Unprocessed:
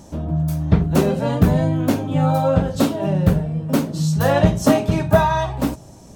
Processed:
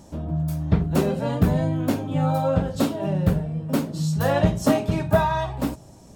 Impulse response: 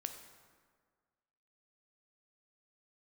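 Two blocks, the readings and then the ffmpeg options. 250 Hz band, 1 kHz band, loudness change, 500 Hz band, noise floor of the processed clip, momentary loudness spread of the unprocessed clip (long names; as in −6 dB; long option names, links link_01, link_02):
−4.5 dB, −4.5 dB, −4.5 dB, −4.5 dB, −47 dBFS, 6 LU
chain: -af "bandreject=frequency=6100:width=23,volume=-4.5dB"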